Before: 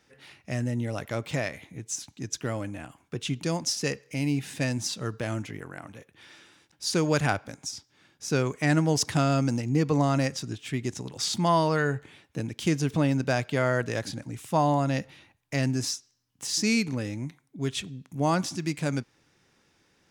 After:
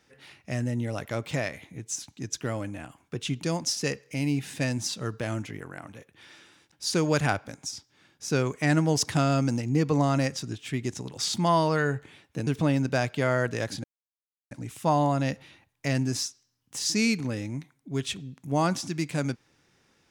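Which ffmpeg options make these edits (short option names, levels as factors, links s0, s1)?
-filter_complex "[0:a]asplit=3[s0][s1][s2];[s0]atrim=end=12.472[s3];[s1]atrim=start=12.818:end=14.19,asetpts=PTS-STARTPTS,afade=t=out:st=1.368:d=0.004:c=hsin,apad=pad_dur=0.67[s4];[s2]atrim=start=14.19,asetpts=PTS-STARTPTS,afade=t=in:d=0.004:c=hsin[s5];[s4][s5]concat=n=2:v=0:a=1[s6];[s3][s6]acrossfade=d=0.004:c1=hsin:c2=hsin"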